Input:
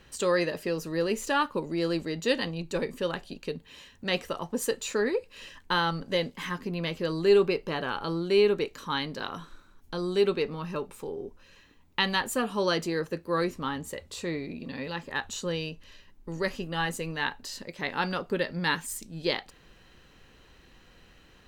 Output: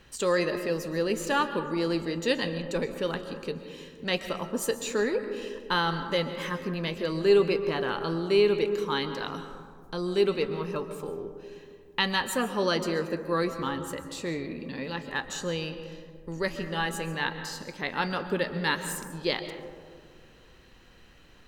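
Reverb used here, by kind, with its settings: digital reverb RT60 2 s, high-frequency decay 0.25×, pre-delay 95 ms, DRR 9 dB

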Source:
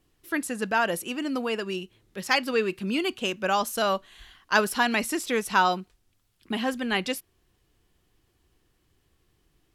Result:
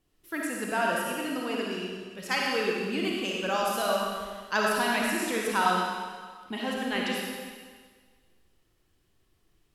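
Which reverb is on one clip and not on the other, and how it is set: digital reverb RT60 1.6 s, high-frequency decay 1×, pre-delay 15 ms, DRR -3 dB; gain -6.5 dB

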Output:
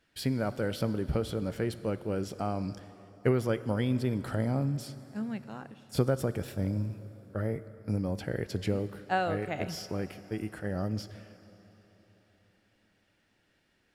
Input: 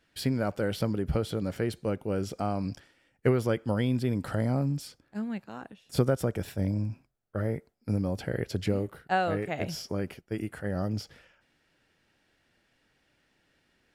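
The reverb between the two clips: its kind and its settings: plate-style reverb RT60 4 s, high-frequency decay 0.8×, DRR 13.5 dB; gain -2 dB

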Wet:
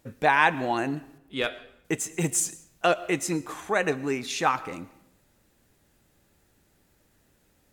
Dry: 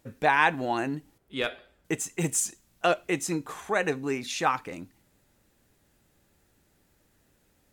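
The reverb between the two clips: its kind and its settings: digital reverb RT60 0.76 s, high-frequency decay 0.8×, pre-delay 75 ms, DRR 18.5 dB; gain +1.5 dB

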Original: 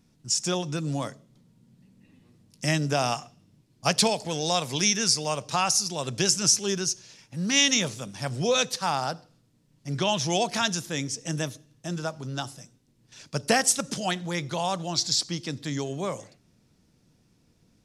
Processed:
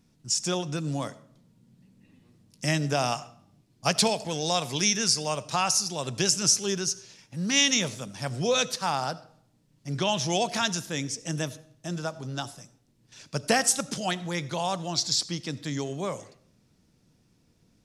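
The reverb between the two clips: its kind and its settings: digital reverb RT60 0.64 s, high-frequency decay 0.55×, pre-delay 40 ms, DRR 19 dB; gain -1 dB

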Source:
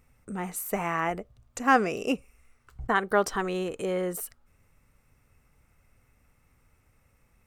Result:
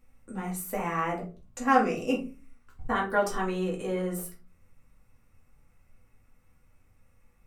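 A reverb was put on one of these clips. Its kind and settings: shoebox room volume 160 m³, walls furnished, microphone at 2.3 m; gain -7 dB

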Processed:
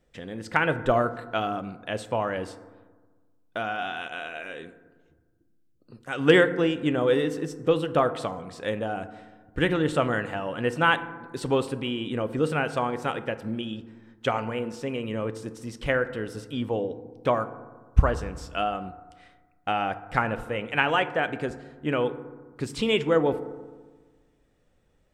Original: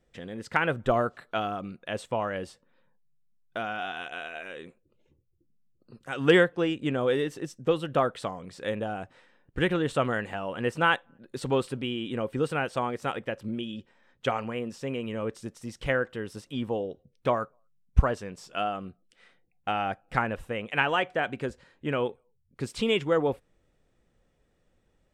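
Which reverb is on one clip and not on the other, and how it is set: FDN reverb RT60 1.4 s, low-frequency decay 1.25×, high-frequency decay 0.35×, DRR 11 dB; gain +2 dB

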